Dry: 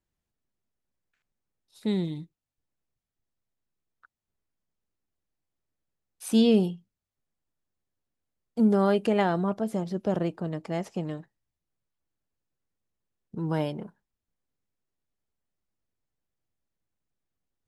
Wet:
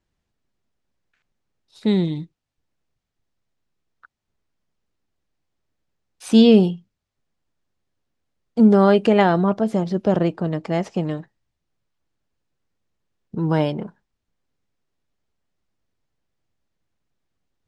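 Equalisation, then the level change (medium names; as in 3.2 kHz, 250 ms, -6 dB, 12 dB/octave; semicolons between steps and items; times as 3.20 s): low-pass 6.1 kHz 12 dB/octave; +8.5 dB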